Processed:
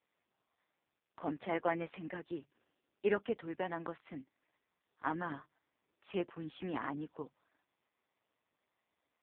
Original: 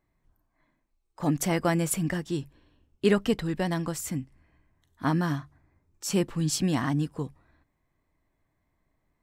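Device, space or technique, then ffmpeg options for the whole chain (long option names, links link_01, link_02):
telephone: -filter_complex "[0:a]asplit=3[link_01][link_02][link_03];[link_01]afade=type=out:start_time=2.07:duration=0.02[link_04];[link_02]bandreject=frequency=3200:width=26,afade=type=in:start_time=2.07:duration=0.02,afade=type=out:start_time=3.97:duration=0.02[link_05];[link_03]afade=type=in:start_time=3.97:duration=0.02[link_06];[link_04][link_05][link_06]amix=inputs=3:normalize=0,highpass=400,lowpass=3100,volume=-5dB" -ar 8000 -c:a libopencore_amrnb -b:a 4750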